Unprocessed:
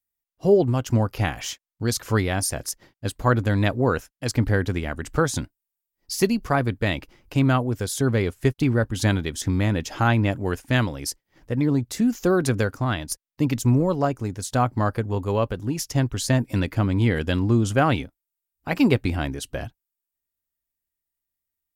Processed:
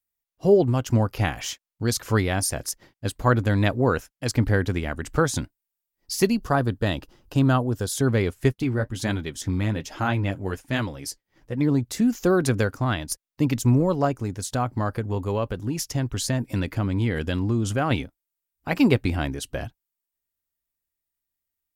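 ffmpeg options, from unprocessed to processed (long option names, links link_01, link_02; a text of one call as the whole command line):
ffmpeg -i in.wav -filter_complex "[0:a]asettb=1/sr,asplit=3[link_01][link_02][link_03];[link_01]atrim=end=6.374[link_04];[link_02]atrim=start=6.37:end=7.92,asetpts=PTS-STARTPTS,afade=type=in:duration=0.004:curve=qsin,afade=type=out:start_time=1.546:duration=0.004:curve=qsin,equalizer=frequency=2200:width=4.8:gain=-14[link_05];[link_03]atrim=start=7.916[link_06];[link_04][link_05]acrossfade=duration=0.004:curve1=hsin:curve2=qsin[link_07];[link_07][link_06]acrossfade=duration=0.004:curve1=qsin:curve2=hsin,asplit=3[link_08][link_09][link_10];[link_08]afade=type=out:start_time=8.52:duration=0.02[link_11];[link_09]flanger=delay=2.7:depth=9.1:regen=-41:speed=1.2:shape=triangular,afade=type=in:start_time=8.52:duration=0.02,afade=type=out:start_time=11.59:duration=0.02[link_12];[link_10]afade=type=in:start_time=11.59:duration=0.02[link_13];[link_11][link_12][link_13]amix=inputs=3:normalize=0,asettb=1/sr,asplit=3[link_14][link_15][link_16];[link_14]atrim=end=14.174[link_17];[link_15]atrim=start=14.17:end=17.91,asetpts=PTS-STARTPTS,afade=type=in:duration=0.004:curve=qsin,afade=type=out:start_time=3.736:duration=0.004:curve=qsin,acompressor=threshold=-22dB:ratio=2:attack=3.2:release=140:knee=1:detection=peak[link_18];[link_16]atrim=start=17.906[link_19];[link_17][link_18]acrossfade=duration=0.004:curve1=hsin:curve2=qsin[link_20];[link_20][link_19]acrossfade=duration=0.004:curve1=qsin:curve2=hsin" out.wav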